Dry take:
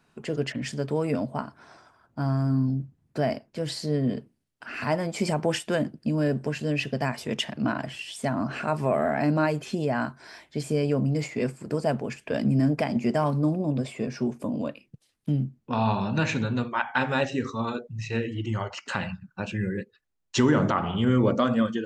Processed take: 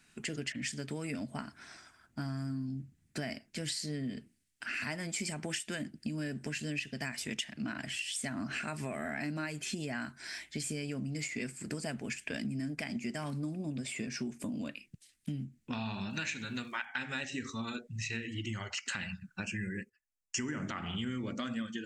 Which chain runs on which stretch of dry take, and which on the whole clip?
16.09–16.85 low shelf 280 Hz -8.5 dB + crackle 450/s -59 dBFS
19.43–20.67 Butterworth band-stop 3800 Hz, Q 2 + gate -54 dBFS, range -13 dB
whole clip: graphic EQ 125/500/1000/2000/8000 Hz -7/-11/-10/+6/+9 dB; compressor, threshold -36 dBFS; gain +1.5 dB

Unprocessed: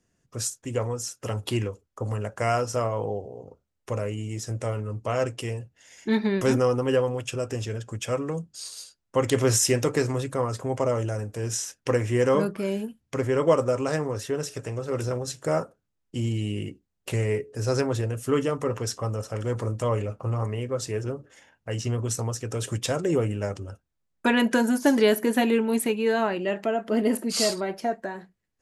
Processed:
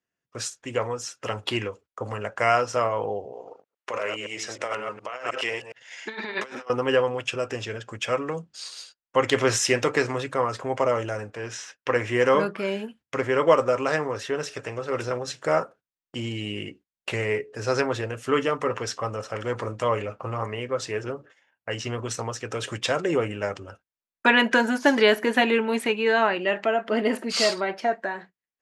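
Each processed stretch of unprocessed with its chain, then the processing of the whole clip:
3.33–6.7 reverse delay 0.104 s, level -6 dB + weighting filter A + negative-ratio compressor -33 dBFS, ratio -0.5
11.3–11.96 LPF 2000 Hz 6 dB/oct + tilt shelf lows -3.5 dB, about 860 Hz
whole clip: gate -48 dBFS, range -16 dB; LPF 2400 Hz 12 dB/oct; tilt +4 dB/oct; gain +5.5 dB

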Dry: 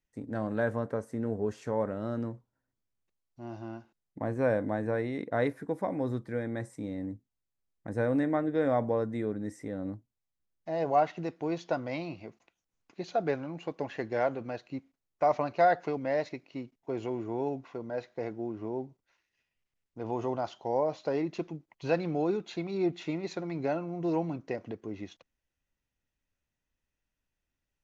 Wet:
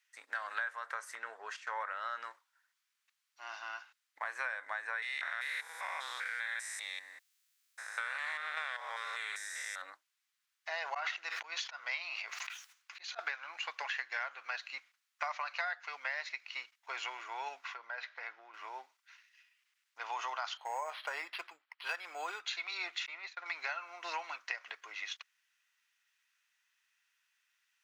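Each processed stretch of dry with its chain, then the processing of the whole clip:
1.15–2.24 high shelf 5600 Hz -11 dB + gate -49 dBFS, range -11 dB
5.02–9.82 stepped spectrum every 0.2 s + tilt +3.5 dB/oct + Doppler distortion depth 0.11 ms
10.71–13.19 auto swell 0.244 s + sustainer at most 65 dB/s
17.74–18.54 compressor 4:1, threshold -36 dBFS + air absorption 160 m
20.57–22.46 tilt shelf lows +3.5 dB, about 640 Hz + decimation joined by straight lines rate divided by 6×
23.06–23.46 compressor 5:1, threshold -34 dBFS + LPF 2400 Hz 6 dB/oct + expander -37 dBFS
whole clip: HPF 1300 Hz 24 dB/oct; compressor 12:1, threshold -49 dBFS; high shelf 7100 Hz -9.5 dB; gain +15.5 dB

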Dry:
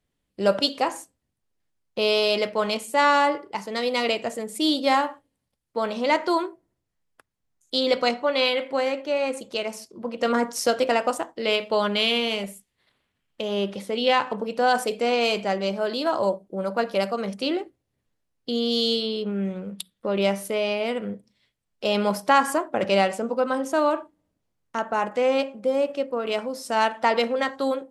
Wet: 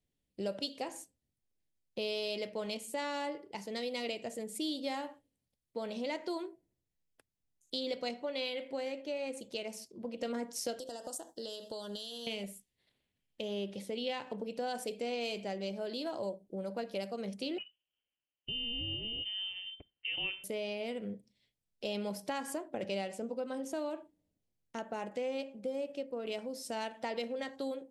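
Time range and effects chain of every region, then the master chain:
10.79–12.27 tone controls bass -5 dB, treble +13 dB + compressor, threshold -29 dBFS + Butterworth band-stop 2300 Hz, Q 1.5
17.58–20.44 HPF 200 Hz + inverted band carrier 3300 Hz
whole clip: bell 1200 Hz -12.5 dB 1 oct; compressor 2.5:1, threshold -30 dBFS; gain -6.5 dB

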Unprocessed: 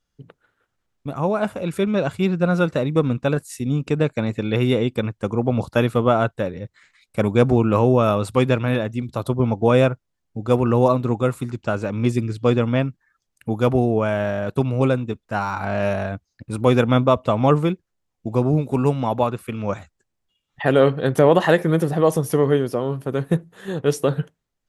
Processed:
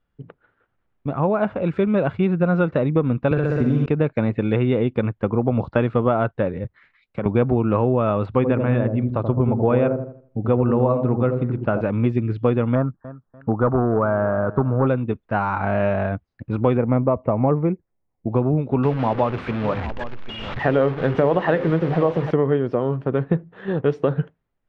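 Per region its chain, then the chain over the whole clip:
3.31–3.86 flutter echo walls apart 10.7 m, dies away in 1.4 s + three-band squash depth 100%
6.64–7.26 compressor 8:1, threshold -28 dBFS + three-band expander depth 40%
8.26–11.81 air absorption 180 m + dark delay 81 ms, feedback 32%, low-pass 660 Hz, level -4 dB
12.75–14.87 overloaded stage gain 11.5 dB + resonant high shelf 1800 Hz -11 dB, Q 3 + feedback echo 0.293 s, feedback 30%, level -20 dB
16.77–18.31 Chebyshev low-pass 2200 Hz, order 4 + bell 1500 Hz -8.5 dB 1 oct
18.83–22.31 delta modulation 64 kbps, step -24.5 dBFS + notches 50/100/150/200/250/300/350/400/450/500 Hz + echo 0.792 s -16 dB
whole clip: Bessel low-pass 2000 Hz, order 4; compressor 3:1, threshold -20 dBFS; gain +4 dB

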